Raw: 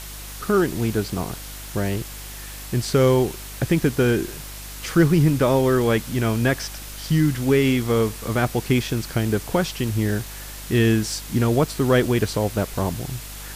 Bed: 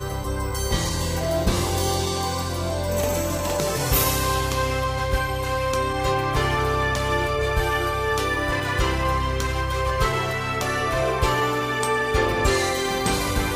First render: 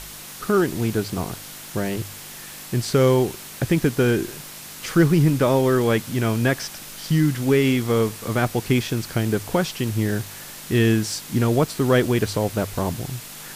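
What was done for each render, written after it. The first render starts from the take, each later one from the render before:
hum removal 50 Hz, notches 2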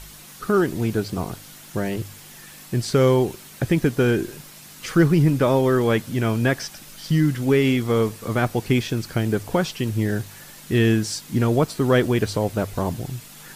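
broadband denoise 7 dB, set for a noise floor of −39 dBFS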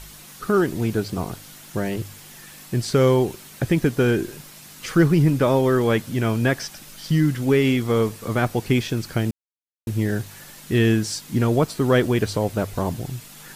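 0:09.31–0:09.87: silence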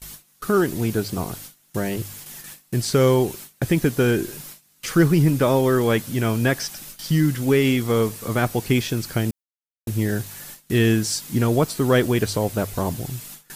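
noise gate with hold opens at −31 dBFS
high-shelf EQ 6,700 Hz +8.5 dB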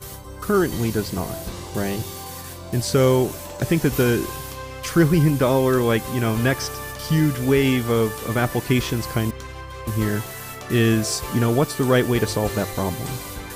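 mix in bed −11 dB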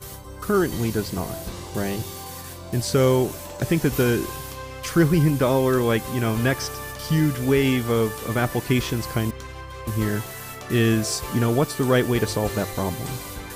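level −1.5 dB

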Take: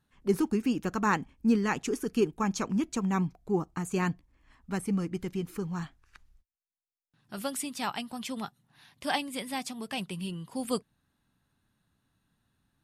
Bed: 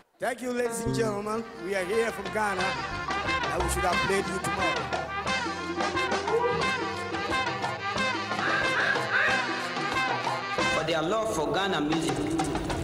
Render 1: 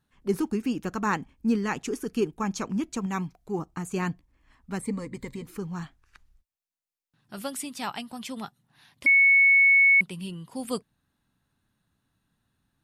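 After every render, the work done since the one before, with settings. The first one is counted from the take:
0:03.06–0:03.59: tilt shelving filter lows −3.5 dB
0:04.81–0:05.46: EQ curve with evenly spaced ripples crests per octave 1, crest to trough 13 dB
0:09.06–0:10.01: beep over 2,210 Hz −14.5 dBFS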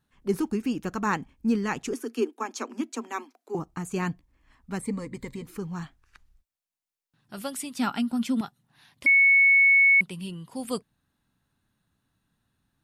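0:01.93–0:03.55: Chebyshev high-pass filter 230 Hz, order 8
0:07.79–0:08.41: hollow resonant body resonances 240/1,400 Hz, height 14 dB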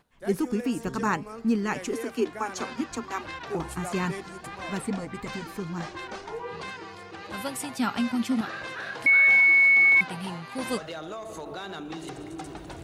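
mix in bed −10.5 dB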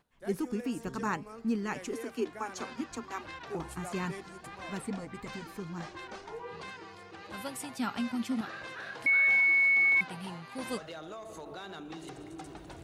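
level −6.5 dB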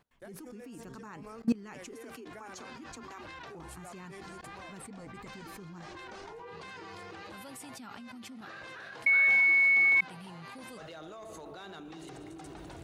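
in parallel at +2 dB: brickwall limiter −28 dBFS, peak gain reduction 9 dB
on the sum: output level in coarse steps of 23 dB

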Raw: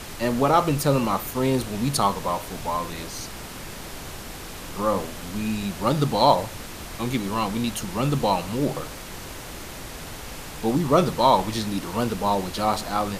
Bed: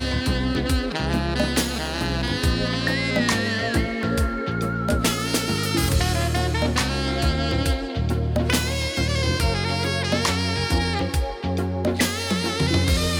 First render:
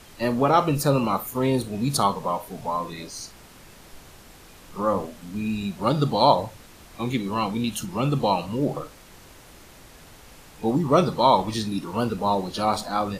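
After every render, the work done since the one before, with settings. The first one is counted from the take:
noise reduction from a noise print 11 dB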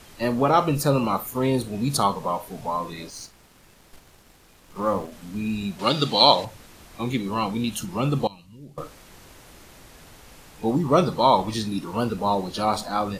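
0:03.10–0:05.12: mu-law and A-law mismatch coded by A
0:05.79–0:06.45: meter weighting curve D
0:08.27–0:08.78: guitar amp tone stack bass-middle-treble 6-0-2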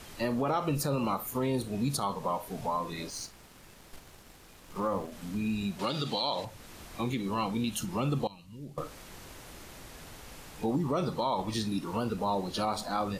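downward compressor 1.5 to 1, threshold −36 dBFS, peak gain reduction 9.5 dB
brickwall limiter −20 dBFS, peak gain reduction 9 dB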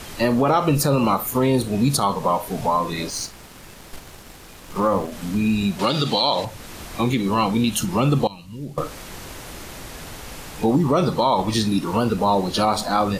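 level +11.5 dB

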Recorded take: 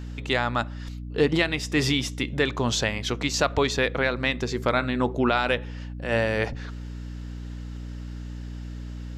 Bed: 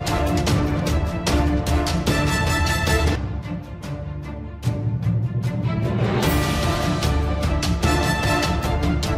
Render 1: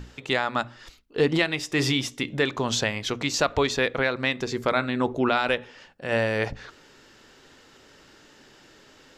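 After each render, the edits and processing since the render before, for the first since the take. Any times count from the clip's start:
mains-hum notches 60/120/180/240/300 Hz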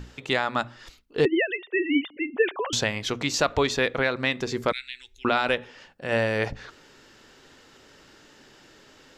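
0:01.25–0:02.73: three sine waves on the formant tracks
0:04.72–0:05.25: inverse Chebyshev band-stop filter 110–1,200 Hz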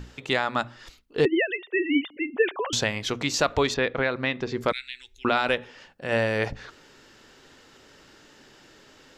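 0:03.74–0:04.61: high-frequency loss of the air 160 metres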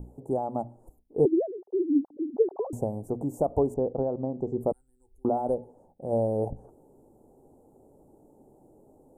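Chebyshev band-stop filter 810–9,000 Hz, order 4
high-shelf EQ 6,300 Hz −4.5 dB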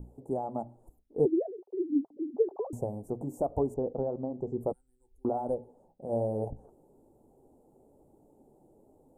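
flanger 1.1 Hz, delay 0.6 ms, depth 5.6 ms, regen −63%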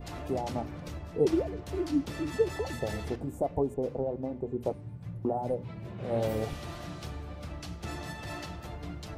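mix in bed −19.5 dB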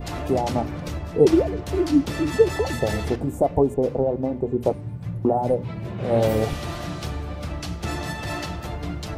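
level +10 dB

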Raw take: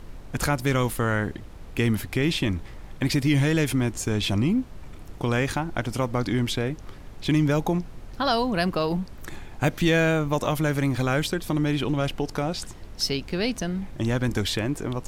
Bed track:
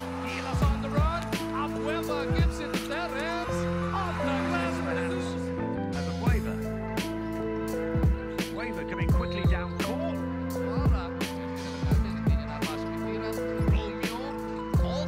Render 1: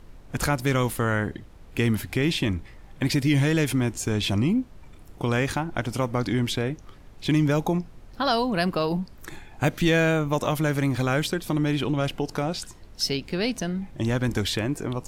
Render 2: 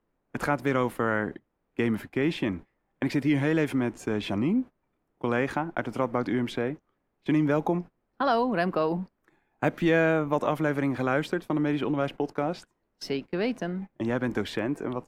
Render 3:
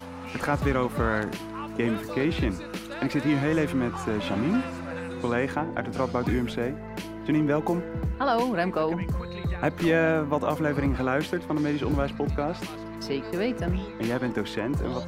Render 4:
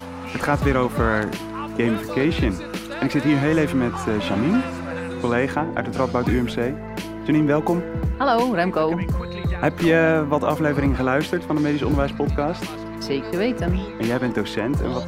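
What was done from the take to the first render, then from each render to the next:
noise reduction from a noise print 6 dB
noise gate −32 dBFS, range −21 dB; three-way crossover with the lows and the highs turned down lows −15 dB, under 180 Hz, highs −15 dB, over 2,300 Hz
mix in bed track −5 dB
level +5.5 dB

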